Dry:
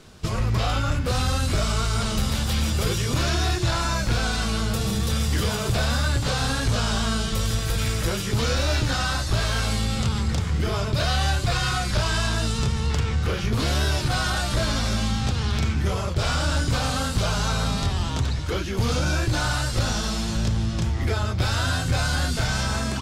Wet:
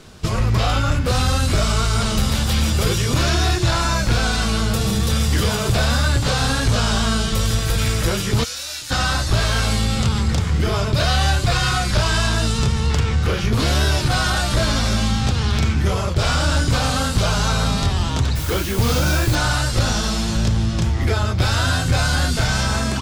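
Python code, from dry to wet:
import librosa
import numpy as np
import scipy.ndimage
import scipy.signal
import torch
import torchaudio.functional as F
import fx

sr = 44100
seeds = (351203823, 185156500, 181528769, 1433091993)

y = fx.pre_emphasis(x, sr, coefficient=0.97, at=(8.43, 8.9), fade=0.02)
y = fx.dmg_noise_colour(y, sr, seeds[0], colour='white', level_db=-37.0, at=(18.35, 19.34), fade=0.02)
y = y * 10.0 ** (5.0 / 20.0)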